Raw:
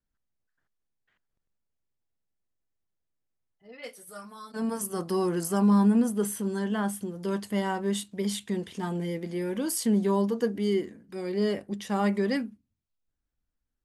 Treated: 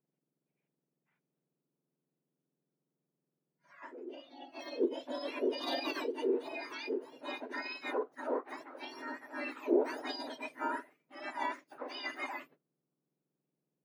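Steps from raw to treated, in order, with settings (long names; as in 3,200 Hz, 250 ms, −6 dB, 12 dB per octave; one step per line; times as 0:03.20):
frequency axis turned over on the octave scale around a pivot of 1,700 Hz
formants moved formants +5 semitones
high-frequency loss of the air 290 metres
level −2.5 dB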